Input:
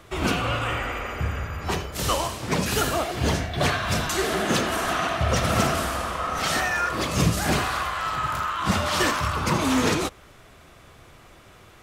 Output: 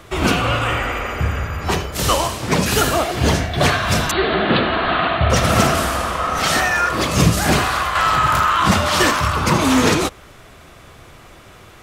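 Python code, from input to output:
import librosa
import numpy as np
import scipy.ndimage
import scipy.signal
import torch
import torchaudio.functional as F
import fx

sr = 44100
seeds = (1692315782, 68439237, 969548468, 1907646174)

y = fx.steep_lowpass(x, sr, hz=4300.0, slope=96, at=(4.11, 5.3))
y = fx.env_flatten(y, sr, amount_pct=50, at=(7.95, 8.74))
y = F.gain(torch.from_numpy(y), 7.0).numpy()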